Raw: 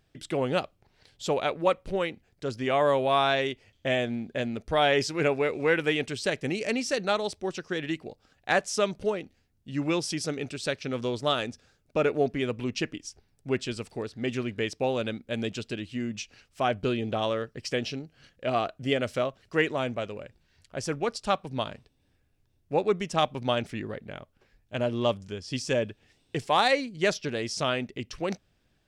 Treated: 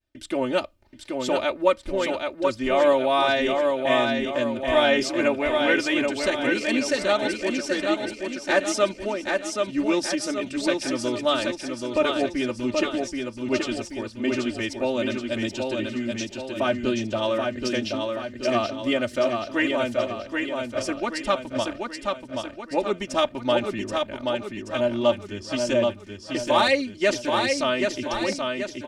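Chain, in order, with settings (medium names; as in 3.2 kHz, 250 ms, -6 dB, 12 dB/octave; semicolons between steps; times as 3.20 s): expander -59 dBFS; comb 3.3 ms, depth 97%; feedback delay 779 ms, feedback 50%, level -4 dB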